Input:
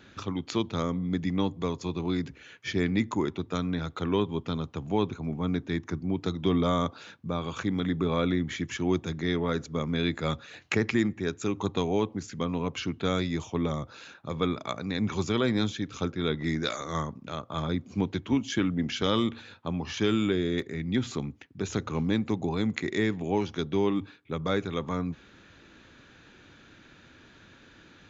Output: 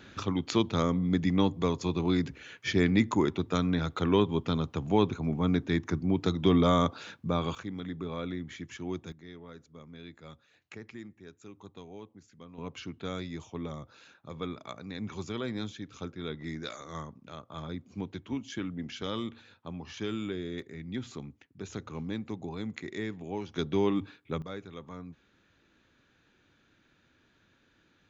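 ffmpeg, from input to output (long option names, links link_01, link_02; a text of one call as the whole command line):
ffmpeg -i in.wav -af "asetnsamples=nb_out_samples=441:pad=0,asendcmd='7.55 volume volume -9.5dB;9.12 volume volume -19.5dB;12.58 volume volume -9dB;23.55 volume volume -1dB;24.42 volume volume -13dB',volume=2dB" out.wav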